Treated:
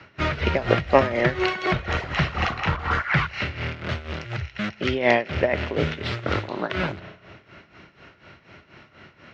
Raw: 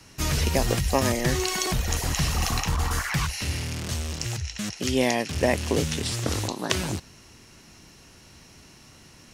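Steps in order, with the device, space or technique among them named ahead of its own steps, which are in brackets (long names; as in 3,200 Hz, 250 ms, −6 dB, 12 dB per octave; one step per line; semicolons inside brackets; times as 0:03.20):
combo amplifier with spring reverb and tremolo (spring reverb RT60 2.2 s, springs 33 ms, chirp 70 ms, DRR 16.5 dB; amplitude tremolo 4.1 Hz, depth 78%; loudspeaker in its box 76–3,500 Hz, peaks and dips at 250 Hz −3 dB, 380 Hz +3 dB, 600 Hz +7 dB, 1,400 Hz +10 dB, 2,100 Hz +6 dB)
level +4.5 dB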